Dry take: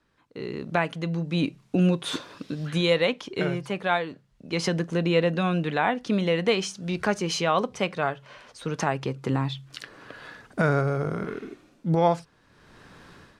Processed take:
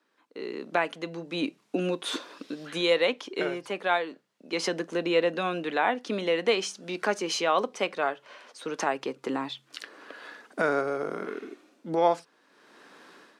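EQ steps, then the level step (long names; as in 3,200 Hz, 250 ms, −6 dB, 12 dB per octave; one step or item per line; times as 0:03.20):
high-pass filter 260 Hz 24 dB per octave
−1.0 dB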